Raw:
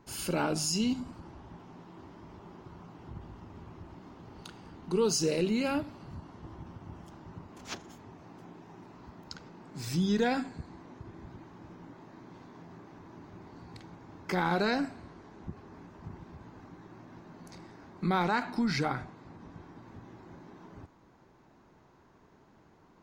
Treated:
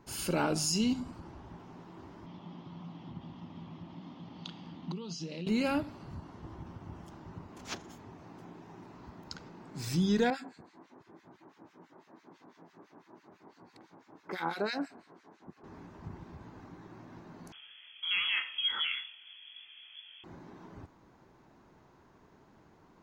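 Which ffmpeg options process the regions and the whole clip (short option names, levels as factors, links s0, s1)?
-filter_complex "[0:a]asettb=1/sr,asplit=3[s0][s1][s2];[s0]atrim=end=2.264[s3];[s1]atrim=start=2.26:end=5.47,asetpts=PTS-STARTPTS,afade=t=in:d=0.004:c=qsin,afade=t=out:st=3.206:d=0.004:c=qsin,acompressor=threshold=0.0158:ratio=16:attack=3.2:release=140:knee=1:detection=peak,highpass=140,equalizer=f=170:t=q:w=4:g=9,equalizer=f=260:t=q:w=4:g=5,equalizer=f=420:t=q:w=4:g=-9,equalizer=f=1500:t=q:w=4:g=-7,equalizer=f=3300:t=q:w=4:g=10,lowpass=f=5700:w=0.5412,lowpass=f=5700:w=1.3066[s4];[s2]atrim=start=5.466[s5];[s3][s4]acrossfade=d=0.004:c1=hsin:c2=qsin[s6];[s6][s5]acrossfade=d=0.004:c1=qsin:c2=hsin,asettb=1/sr,asplit=3[s7][s8][s9];[s7]atrim=end=10.304[s10];[s8]atrim=start=10.3:end=15.64,asetpts=PTS-STARTPTS,afade=t=in:d=0.004:c=qsin,afade=t=out:st=5.336:d=0.004:c=qsin,acrossover=split=1500[s11][s12];[s11]aeval=exprs='val(0)*(1-1/2+1/2*cos(2*PI*6*n/s))':c=same[s13];[s12]aeval=exprs='val(0)*(1-1/2-1/2*cos(2*PI*6*n/s))':c=same[s14];[s13][s14]amix=inputs=2:normalize=0,highpass=260[s15];[s9]atrim=start=15.636[s16];[s10][s15]acrossfade=d=0.004:c1=hsin:c2=qsin[s17];[s17][s16]acrossfade=d=0.004:c1=qsin:c2=hsin,asettb=1/sr,asplit=3[s18][s19][s20];[s18]atrim=end=17.524[s21];[s19]atrim=start=17.52:end=20.24,asetpts=PTS-STARTPTS,afade=t=in:d=0.004:c=qsin,afade=t=out:st=2.716:d=0.004:c=qsin,flanger=delay=20:depth=6.5:speed=1.6,lowpass=f=3000:t=q:w=0.5098,lowpass=f=3000:t=q:w=0.6013,lowpass=f=3000:t=q:w=0.9,lowpass=f=3000:t=q:w=2.563,afreqshift=-3500[s22];[s20]atrim=start=20.236[s23];[s21][s22]acrossfade=d=0.004:c1=hsin:c2=qsin[s24];[s24][s23]acrossfade=d=0.004:c1=qsin:c2=hsin"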